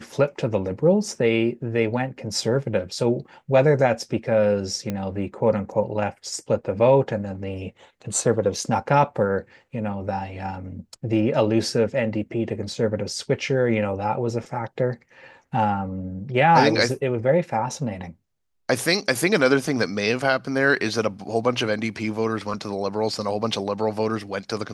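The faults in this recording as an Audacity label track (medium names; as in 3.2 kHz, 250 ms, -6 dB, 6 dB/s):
4.900000	4.900000	pop -14 dBFS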